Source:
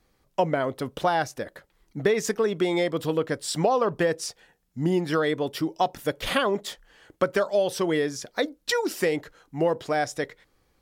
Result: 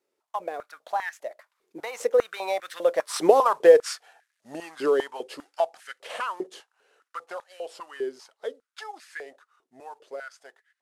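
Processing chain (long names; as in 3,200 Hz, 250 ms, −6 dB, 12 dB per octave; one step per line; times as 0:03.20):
variable-slope delta modulation 64 kbit/s
source passing by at 0:03.57, 38 m/s, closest 29 metres
high-pass on a step sequencer 5 Hz 390–1,700 Hz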